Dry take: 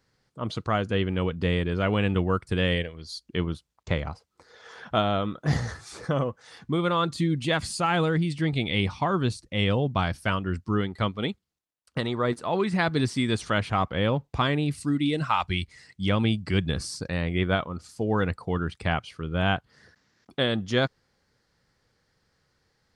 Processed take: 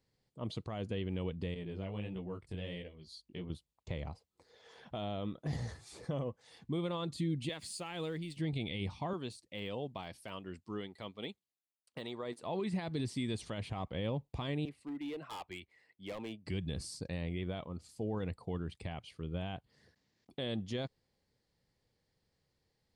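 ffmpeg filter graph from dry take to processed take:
-filter_complex "[0:a]asettb=1/sr,asplit=3[a][b][c];[a]atrim=end=1.544[d];[b]atrim=start=1.54:end=3.5,asetpts=PTS-STARTPTS,afade=t=in:d=0.004:c=qsin,afade=t=out:st=1.956:d=0.004:c=qsin,highshelf=f=7.5k:g=-5.5,acompressor=threshold=-27dB:ratio=3:attack=3.2:release=140:knee=1:detection=peak,flanger=delay=15.5:depth=5.7:speed=1.5[e];[c]atrim=start=3.496[f];[d][e]acrossfade=d=0.004:c1=hsin:c2=qsin[g];[g][f]acrossfade=d=0.004:c1=qsin:c2=hsin,asettb=1/sr,asplit=3[h][i][j];[h]atrim=end=7.494[k];[i]atrim=start=7.49:end=8.37,asetpts=PTS-STARTPTS,afade=t=in:d=0.004:c=qsin,afade=t=out:st=0.876:d=0.004:c=qsin,highpass=f=410:p=1,aeval=exprs='sgn(val(0))*max(abs(val(0))-0.00178,0)':c=same,equalizer=f=760:t=o:w=0.85:g=-5.5[l];[j]atrim=start=8.366[m];[k][l]acrossfade=d=0.004:c1=hsin:c2=qsin[n];[n][m]acrossfade=d=0.004:c1=qsin:c2=hsin,asettb=1/sr,asplit=3[o][p][q];[o]atrim=end=9.134[r];[p]atrim=start=9.13:end=12.43,asetpts=PTS-STARTPTS,afade=t=in:d=0.004:c=qsin,afade=t=out:st=3.296:d=0.004:c=qsin,highpass=f=500:p=1,deesser=0.95[s];[q]atrim=start=12.426[t];[r][s]acrossfade=d=0.004:c1=hsin:c2=qsin[u];[u][t]acrossfade=d=0.004:c1=qsin:c2=hsin,asettb=1/sr,asplit=3[v][w][x];[v]atrim=end=14.654[y];[w]atrim=start=14.65:end=16.46,asetpts=PTS-STARTPTS,afade=t=in:d=0.004:c=qsin,afade=t=out:st=1.806:d=0.004:c=qsin,acrossover=split=320 2600:gain=0.1 1 0.112[z][aa][ab];[z][aa][ab]amix=inputs=3:normalize=0,asoftclip=type=hard:threshold=-28.5dB[ac];[x]atrim=start=16.456[ad];[y][ac]acrossfade=d=0.004:c1=hsin:c2=qsin[ae];[ae][ad]acrossfade=d=0.004:c1=qsin:c2=hsin,equalizer=f=5.8k:w=3:g=-5,alimiter=limit=-19dB:level=0:latency=1:release=52,equalizer=f=1.4k:w=1.9:g=-12,volume=-8dB"

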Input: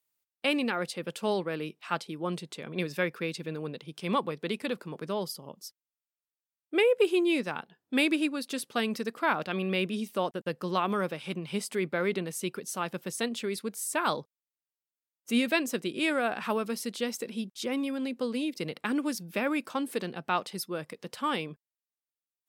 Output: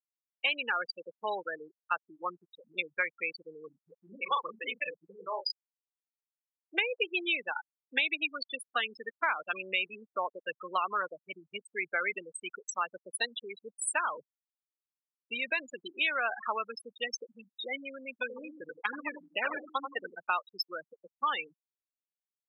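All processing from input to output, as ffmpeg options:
-filter_complex "[0:a]asettb=1/sr,asplit=3[a][b][c];[a]atrim=end=3.694[d];[b]atrim=start=3.69:end=5.6,asetpts=PTS-STARTPTS,afade=t=in:d=0.004:c=qsin,afade=t=out:st=1.906:d=0.004:c=qsin,asplit=2[e][f];[f]adelay=36,volume=-5dB[g];[e][g]amix=inputs=2:normalize=0,atrim=end_sample=84231,acrossover=split=360[h][i];[i]adelay=170[j];[h][j]amix=inputs=2:normalize=0,atrim=end_sample=84231[k];[c]atrim=start=5.596[l];[d][k]acrossfade=d=0.004:c1=hsin:c2=qsin[m];[m][l]acrossfade=d=0.004:c1=qsin:c2=hsin,asettb=1/sr,asplit=3[n][o][p];[n]atrim=end=14.044[q];[o]atrim=start=14.04:end=15.89,asetpts=PTS-STARTPTS,afade=t=in:d=0.004:c=qsin,afade=t=out:st=1.846:d=0.004:c=qsin,equalizer=f=87:t=o:w=2.6:g=4.5,acompressor=threshold=-26dB:ratio=4:attack=3.2:release=140:knee=1:detection=peak[r];[p]atrim=start=15.886[s];[q][r]acrossfade=d=0.004:c1=hsin:c2=qsin[t];[t][s]acrossfade=d=0.004:c1=qsin:c2=hsin,asettb=1/sr,asplit=3[u][v][w];[u]atrim=end=18.114[x];[v]atrim=start=18.11:end=20.15,asetpts=PTS-STARTPTS,afade=t=in:d=0.004:c=qsin,afade=t=out:st=2.036:d=0.004:c=qsin,aecho=1:1:85|170|255|340|425:0.473|0.208|0.0916|0.0403|0.0177,atrim=end_sample=89964,acrusher=samples=15:mix=1:aa=0.000001:lfo=1:lforange=15:lforate=2.2[y];[w]atrim=start=20.146[z];[x][y]acrossfade=d=0.004:c1=hsin:c2=qsin[aa];[aa][z]acrossfade=d=0.004:c1=qsin:c2=hsin,afftfilt=real='re*gte(hypot(re,im),0.0562)':imag='im*gte(hypot(re,im),0.0562)':win_size=1024:overlap=0.75,highpass=1.2k,acompressor=threshold=-35dB:ratio=4,volume=8.5dB"

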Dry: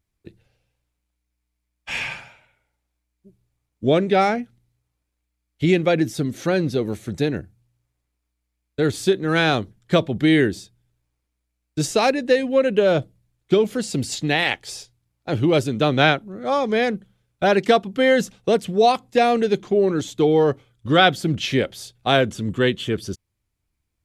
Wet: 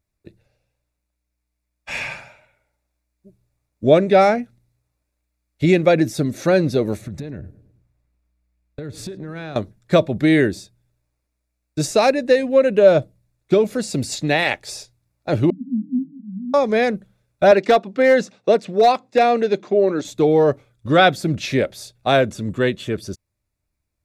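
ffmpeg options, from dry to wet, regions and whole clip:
-filter_complex "[0:a]asettb=1/sr,asplit=3[a][b][c];[a]atrim=end=7.014[d];[b]atrim=start=7.01:end=9.56,asetpts=PTS-STARTPTS,afade=t=in:d=0.004:c=qsin,afade=t=out:st=2.546:d=0.004:c=qsin,bass=f=250:g=8,treble=f=4k:g=-6,acompressor=threshold=-29dB:ratio=12:attack=3.2:release=140:knee=1:detection=peak,asplit=2[e][f];[f]adelay=106,lowpass=f=1.3k:p=1,volume=-16.5dB,asplit=2[g][h];[h]adelay=106,lowpass=f=1.3k:p=1,volume=0.5,asplit=2[i][j];[j]adelay=106,lowpass=f=1.3k:p=1,volume=0.5,asplit=2[k][l];[l]adelay=106,lowpass=f=1.3k:p=1,volume=0.5[m];[e][g][i][k][m]amix=inputs=5:normalize=0,atrim=end_sample=112455[n];[c]atrim=start=9.556[o];[d][n]acrossfade=d=0.004:c1=hsin:c2=qsin[p];[p][o]acrossfade=d=0.004:c1=qsin:c2=hsin,asettb=1/sr,asplit=3[q][r][s];[q]atrim=end=15.504[t];[r]atrim=start=15.5:end=16.54,asetpts=PTS-STARTPTS,afade=t=in:d=0.004:c=qsin,afade=t=out:st=1.036:d=0.004:c=qsin,asuperpass=centerf=220:order=12:qfactor=2.8,acontrast=25[u];[s]atrim=start=16.536[v];[t][u]acrossfade=d=0.004:c1=hsin:c2=qsin[w];[w][v]acrossfade=d=0.004:c1=qsin:c2=hsin,asettb=1/sr,asplit=3[x][y][z];[x]atrim=end=17.514[aa];[y]atrim=start=17.51:end=20.05,asetpts=PTS-STARTPTS,afade=t=in:d=0.004:c=qsin,afade=t=out:st=2.536:d=0.004:c=qsin,highpass=220,lowpass=5.5k,asoftclip=type=hard:threshold=-10dB[ab];[z]atrim=start=20.046[ac];[aa][ab]acrossfade=d=0.004:c1=hsin:c2=qsin[ad];[ad][ac]acrossfade=d=0.004:c1=qsin:c2=hsin,equalizer=f=600:t=o:w=0.23:g=8.5,bandreject=f=3.1k:w=5.5,dynaudnorm=f=370:g=11:m=11.5dB,volume=-1dB"

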